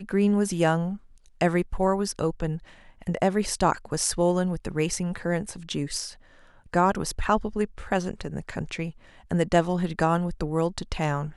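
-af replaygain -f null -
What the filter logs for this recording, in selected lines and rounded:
track_gain = +5.8 dB
track_peak = 0.374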